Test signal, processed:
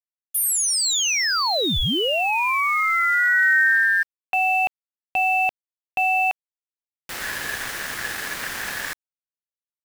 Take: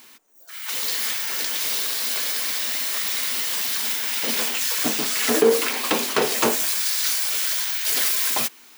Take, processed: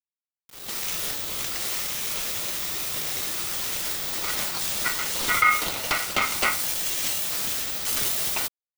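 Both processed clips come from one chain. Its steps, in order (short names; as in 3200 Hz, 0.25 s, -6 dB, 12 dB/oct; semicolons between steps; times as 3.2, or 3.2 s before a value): dynamic EQ 160 Hz, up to +5 dB, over -33 dBFS, Q 0.93; ring modulator 1700 Hz; sample gate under -33 dBFS; gain -1 dB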